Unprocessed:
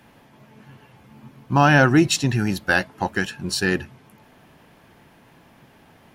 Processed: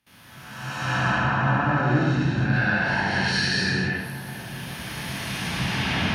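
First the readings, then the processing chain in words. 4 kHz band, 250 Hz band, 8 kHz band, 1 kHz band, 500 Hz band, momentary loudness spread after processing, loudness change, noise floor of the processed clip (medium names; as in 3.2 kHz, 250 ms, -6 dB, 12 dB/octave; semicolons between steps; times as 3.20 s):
+2.0 dB, -3.0 dB, -6.0 dB, -1.5 dB, -5.5 dB, 12 LU, -4.0 dB, -46 dBFS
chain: reverse spectral sustain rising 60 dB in 2.04 s; recorder AGC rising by 13 dB/s; peaking EQ 930 Hz -4.5 dB 2.7 oct; gate with hold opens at -39 dBFS; low-pass that closes with the level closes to 970 Hz, closed at -13 dBFS; amplifier tone stack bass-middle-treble 5-5-5; in parallel at 0 dB: compression, threshold -42 dBFS, peak gain reduction 13 dB; on the sum: high-pass 52 Hz; band-stop 7.4 kHz, Q 5.6; on a send: filtered feedback delay 407 ms, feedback 81%, low-pass 2.8 kHz, level -16 dB; on the sum: gated-style reverb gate 350 ms flat, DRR -5.5 dB; trim +3 dB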